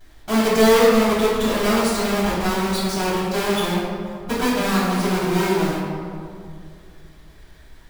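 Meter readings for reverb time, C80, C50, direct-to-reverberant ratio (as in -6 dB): 2.4 s, 1.0 dB, -1.0 dB, -10.0 dB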